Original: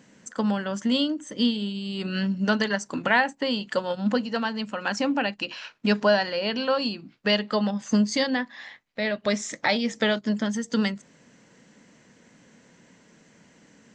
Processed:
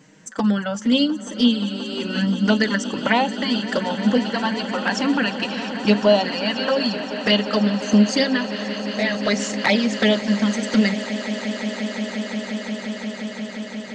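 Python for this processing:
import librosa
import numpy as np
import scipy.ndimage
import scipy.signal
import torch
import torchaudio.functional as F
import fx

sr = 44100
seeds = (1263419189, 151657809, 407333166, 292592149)

y = fx.env_flanger(x, sr, rest_ms=6.8, full_db=-18.0)
y = fx.echo_swell(y, sr, ms=176, loudest=8, wet_db=-17)
y = y * 10.0 ** (7.0 / 20.0)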